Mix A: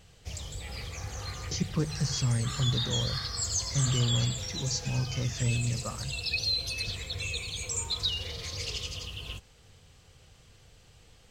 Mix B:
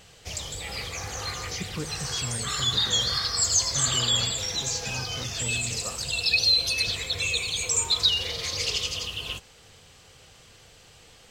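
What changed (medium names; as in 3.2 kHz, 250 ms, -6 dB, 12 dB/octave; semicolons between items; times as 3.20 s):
background +8.5 dB; master: add bass shelf 190 Hz -11.5 dB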